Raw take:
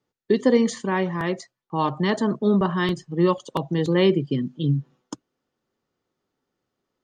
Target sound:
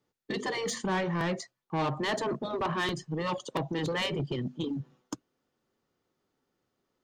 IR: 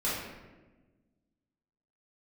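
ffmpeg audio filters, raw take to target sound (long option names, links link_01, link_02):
-af "afftfilt=real='re*lt(hypot(re,im),0.562)':imag='im*lt(hypot(re,im),0.562)':win_size=1024:overlap=0.75,asoftclip=type=tanh:threshold=-24.5dB"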